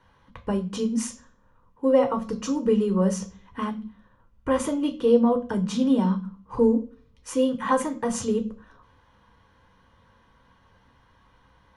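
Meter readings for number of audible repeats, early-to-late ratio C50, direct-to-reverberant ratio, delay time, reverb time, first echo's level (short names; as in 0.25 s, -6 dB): none, 15.0 dB, 4.5 dB, none, 0.40 s, none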